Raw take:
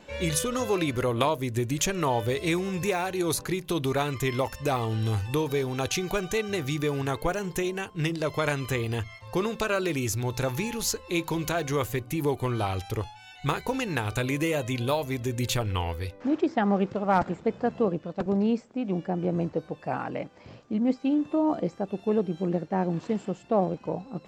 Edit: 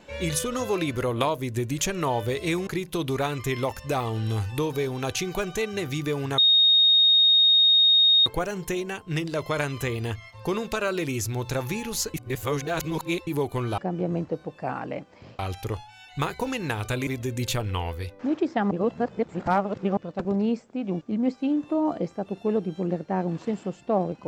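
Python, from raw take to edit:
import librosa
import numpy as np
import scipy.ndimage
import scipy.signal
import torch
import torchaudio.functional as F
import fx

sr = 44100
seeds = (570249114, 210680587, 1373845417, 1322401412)

y = fx.edit(x, sr, fx.cut(start_s=2.67, length_s=0.76),
    fx.insert_tone(at_s=7.14, length_s=1.88, hz=3720.0, db=-14.5),
    fx.reverse_span(start_s=11.02, length_s=1.13),
    fx.cut(start_s=14.34, length_s=0.74),
    fx.reverse_span(start_s=16.72, length_s=1.26),
    fx.move(start_s=19.02, length_s=1.61, to_s=12.66), tone=tone)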